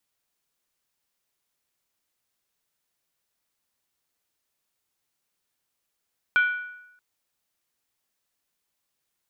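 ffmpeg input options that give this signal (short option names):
-f lavfi -i "aevalsrc='0.178*pow(10,-3*t/0.87)*sin(2*PI*1470*t)+0.0562*pow(10,-3*t/0.689)*sin(2*PI*2343.2*t)+0.0178*pow(10,-3*t/0.595)*sin(2*PI*3139.9*t)+0.00562*pow(10,-3*t/0.574)*sin(2*PI*3375.1*t)+0.00178*pow(10,-3*t/0.534)*sin(2*PI*3899.9*t)':d=0.63:s=44100"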